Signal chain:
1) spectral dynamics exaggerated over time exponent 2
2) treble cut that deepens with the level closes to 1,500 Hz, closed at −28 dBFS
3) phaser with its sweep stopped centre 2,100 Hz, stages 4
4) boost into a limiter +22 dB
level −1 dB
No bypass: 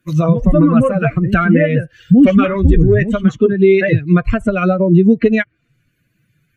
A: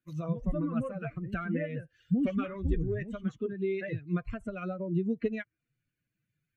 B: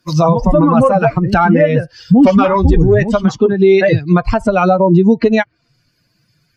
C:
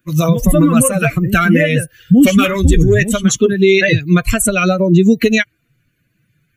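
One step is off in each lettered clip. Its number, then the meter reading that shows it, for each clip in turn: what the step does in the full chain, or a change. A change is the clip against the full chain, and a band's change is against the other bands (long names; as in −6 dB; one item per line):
4, change in crest factor +5.5 dB
3, 1 kHz band +8.5 dB
2, 2 kHz band +5.0 dB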